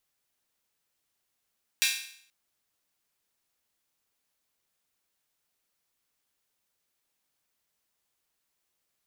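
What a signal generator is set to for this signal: open hi-hat length 0.48 s, high-pass 2400 Hz, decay 0.61 s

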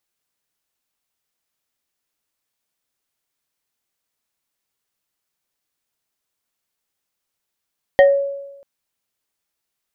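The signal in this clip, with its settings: FM tone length 0.64 s, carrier 558 Hz, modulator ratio 2.33, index 0.83, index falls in 0.29 s exponential, decay 1.00 s, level -5 dB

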